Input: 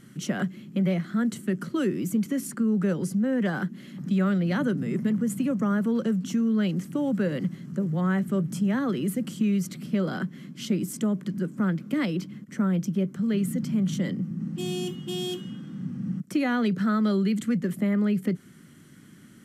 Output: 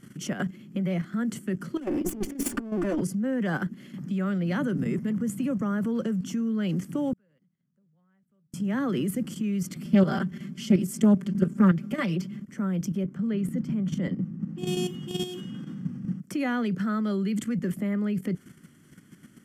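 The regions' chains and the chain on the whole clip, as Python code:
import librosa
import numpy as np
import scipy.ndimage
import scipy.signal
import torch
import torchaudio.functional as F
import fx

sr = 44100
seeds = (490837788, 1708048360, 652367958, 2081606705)

y = fx.chain(x, sr, fx.lower_of_two(delay_ms=3.4),
    fx.peak_eq(hz=300.0, db=8.0, octaves=0.69),
    fx.over_compress(threshold_db=-27.0, ratio=-0.5), at=(1.77, 3.01))
y = fx.chain(y, sr, fx.gate_flip(shuts_db=-33.0, range_db=-37),
    fx.peak_eq(hz=330.0, db=-7.0, octaves=0.86), at=(7.13, 8.54))
y = fx.chain(y, sr, fx.comb(ms=5.1, depth=0.87),
    fx.doppler_dist(depth_ms=0.18), at=(9.85, 12.46))
y = fx.chain(y, sr, fx.highpass(hz=50.0, slope=6),
    fx.high_shelf(hz=3600.0, db=-10.5), at=(13.04, 14.67))
y = fx.notch(y, sr, hz=3900.0, q=6.4)
y = fx.level_steps(y, sr, step_db=10)
y = y * librosa.db_to_amplitude(3.5)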